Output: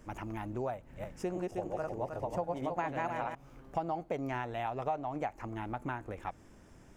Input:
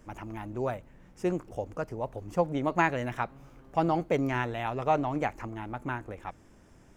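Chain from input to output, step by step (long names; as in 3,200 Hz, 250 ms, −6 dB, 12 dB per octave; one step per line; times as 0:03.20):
0:00.73–0:03.35: feedback delay that plays each chunk backwards 157 ms, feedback 52%, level −1 dB
dynamic equaliser 740 Hz, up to +8 dB, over −41 dBFS, Q 2
downward compressor 4 to 1, threshold −34 dBFS, peak gain reduction 16.5 dB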